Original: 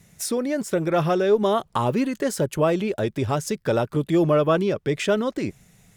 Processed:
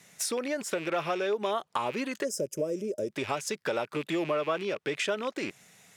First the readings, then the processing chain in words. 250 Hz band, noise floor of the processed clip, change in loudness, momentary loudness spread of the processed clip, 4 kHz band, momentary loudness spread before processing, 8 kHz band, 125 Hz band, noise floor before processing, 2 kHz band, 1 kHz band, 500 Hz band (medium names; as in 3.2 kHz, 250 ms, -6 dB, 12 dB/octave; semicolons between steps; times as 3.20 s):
-11.5 dB, -70 dBFS, -8.5 dB, 4 LU, -3.0 dB, 6 LU, -2.5 dB, -18.0 dB, -61 dBFS, -2.5 dB, -7.0 dB, -9.0 dB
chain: rattle on loud lows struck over -31 dBFS, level -27 dBFS; time-frequency box 2.25–3.10 s, 630–4900 Hz -22 dB; frequency weighting A; compression 2.5:1, threshold -33 dBFS, peak gain reduction 11 dB; trim +2.5 dB